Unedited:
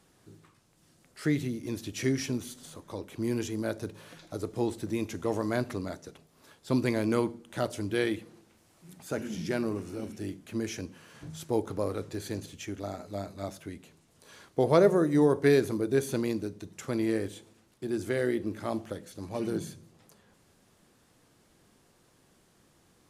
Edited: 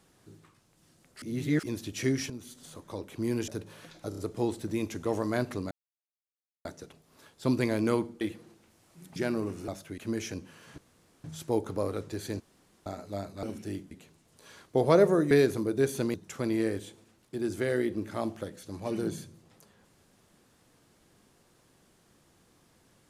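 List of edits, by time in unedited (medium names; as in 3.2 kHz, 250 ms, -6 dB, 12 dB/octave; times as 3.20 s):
1.22–1.63 s: reverse
2.30–2.78 s: fade in, from -12 dB
3.48–3.76 s: delete
4.37 s: stutter 0.03 s, 4 plays
5.90 s: insert silence 0.94 s
7.46–8.08 s: delete
9.03–9.45 s: delete
9.97–10.45 s: swap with 13.44–13.74 s
11.25 s: insert room tone 0.46 s
12.41–12.87 s: room tone
15.14–15.45 s: delete
16.28–16.63 s: delete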